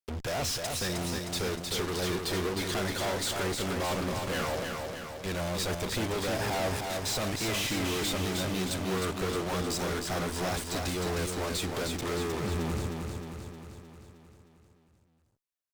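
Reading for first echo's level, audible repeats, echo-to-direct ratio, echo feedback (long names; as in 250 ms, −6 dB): −4.5 dB, 7, −2.5 dB, 58%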